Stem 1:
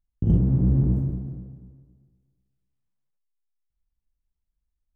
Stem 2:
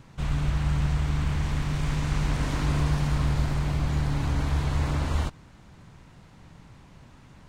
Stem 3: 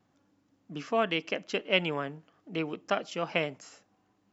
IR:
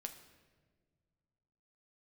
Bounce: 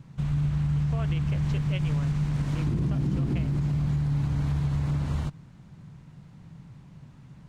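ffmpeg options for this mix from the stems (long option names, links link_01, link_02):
-filter_complex "[0:a]equalizer=frequency=290:width=0.81:gain=8,adelay=2450,volume=-4dB[link_01];[1:a]equalizer=frequency=150:width_type=o:width=1.2:gain=14,volume=-6.5dB[link_02];[2:a]volume=-8.5dB[link_03];[link_01][link_02][link_03]amix=inputs=3:normalize=0,alimiter=limit=-19.5dB:level=0:latency=1:release=102"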